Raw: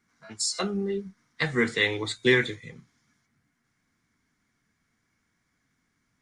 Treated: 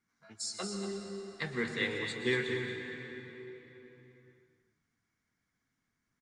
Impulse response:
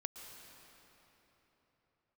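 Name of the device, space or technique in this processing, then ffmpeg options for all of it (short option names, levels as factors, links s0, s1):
cave: -filter_complex "[0:a]aecho=1:1:234:0.376[s0];[1:a]atrim=start_sample=2205[s1];[s0][s1]afir=irnorm=-1:irlink=0,volume=0.447"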